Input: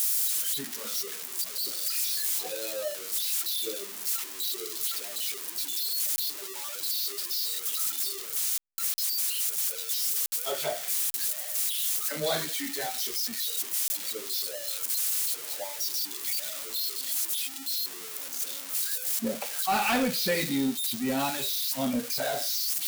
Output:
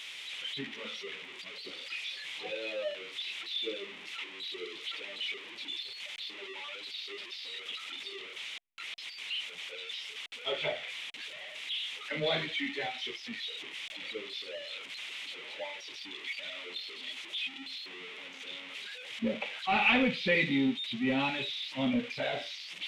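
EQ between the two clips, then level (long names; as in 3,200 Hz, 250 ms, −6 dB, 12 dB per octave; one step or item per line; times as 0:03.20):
head-to-tape spacing loss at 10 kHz 34 dB
flat-topped bell 2,700 Hz +14 dB 1.1 octaves
notch filter 700 Hz, Q 12
0.0 dB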